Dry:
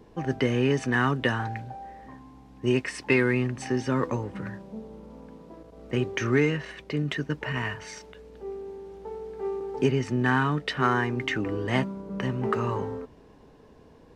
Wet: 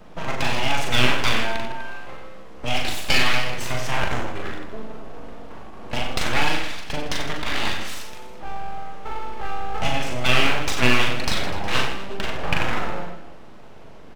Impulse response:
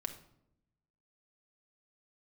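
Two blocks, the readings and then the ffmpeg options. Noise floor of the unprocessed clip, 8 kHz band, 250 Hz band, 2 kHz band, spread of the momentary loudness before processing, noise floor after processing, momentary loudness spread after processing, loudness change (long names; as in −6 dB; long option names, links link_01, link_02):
−53 dBFS, +11.5 dB, −3.5 dB, +6.0 dB, 18 LU, −38 dBFS, 20 LU, +3.0 dB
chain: -filter_complex "[1:a]atrim=start_sample=2205,atrim=end_sample=6174[link_01];[0:a][link_01]afir=irnorm=-1:irlink=0,acrossover=split=470|810[link_02][link_03][link_04];[link_02]acompressor=threshold=-36dB:ratio=6[link_05];[link_05][link_03][link_04]amix=inputs=3:normalize=0,aeval=exprs='abs(val(0))':channel_layout=same,equalizer=frequency=2800:width=2.1:gain=3.5,aecho=1:1:40|92|159.6|247.5|361.7:0.631|0.398|0.251|0.158|0.1,volume=8dB"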